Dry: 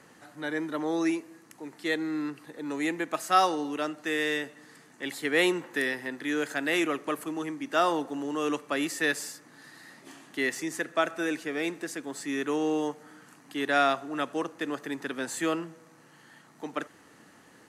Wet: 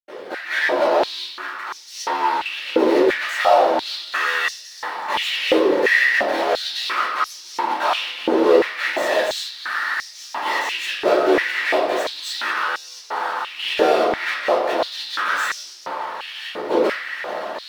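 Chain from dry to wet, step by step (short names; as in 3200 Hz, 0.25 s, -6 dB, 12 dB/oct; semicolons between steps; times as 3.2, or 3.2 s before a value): median filter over 9 samples; AGC gain up to 5.5 dB; ring modulator 39 Hz; compressor, threshold -30 dBFS, peak gain reduction 15.5 dB; fuzz box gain 48 dB, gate -56 dBFS; reverb RT60 0.70 s, pre-delay 76 ms; stepped high-pass 2.9 Hz 440–5700 Hz; gain -1.5 dB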